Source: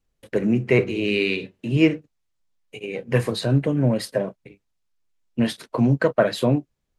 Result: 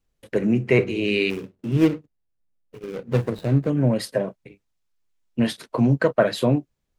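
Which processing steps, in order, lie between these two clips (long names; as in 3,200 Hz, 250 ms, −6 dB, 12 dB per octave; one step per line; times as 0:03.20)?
0:01.30–0:03.70: running median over 41 samples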